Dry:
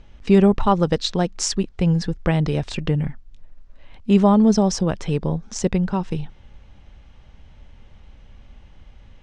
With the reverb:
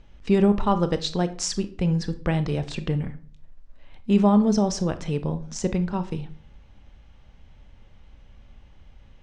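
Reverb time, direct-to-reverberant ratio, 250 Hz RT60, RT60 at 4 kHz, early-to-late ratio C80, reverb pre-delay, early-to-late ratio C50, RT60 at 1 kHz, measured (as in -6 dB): 0.50 s, 10.5 dB, 0.55 s, 0.35 s, 19.5 dB, 24 ms, 15.0 dB, 0.45 s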